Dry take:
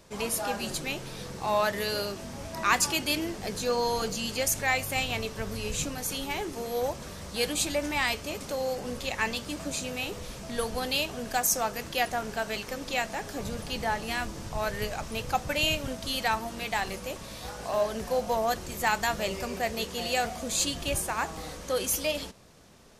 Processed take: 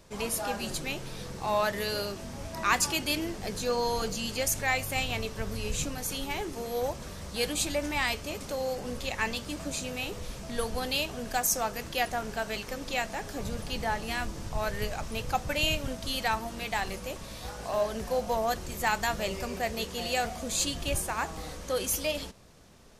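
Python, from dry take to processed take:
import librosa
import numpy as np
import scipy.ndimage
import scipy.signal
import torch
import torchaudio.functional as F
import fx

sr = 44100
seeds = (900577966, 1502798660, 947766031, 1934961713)

y = fx.low_shelf(x, sr, hz=69.0, db=7.0)
y = y * librosa.db_to_amplitude(-1.5)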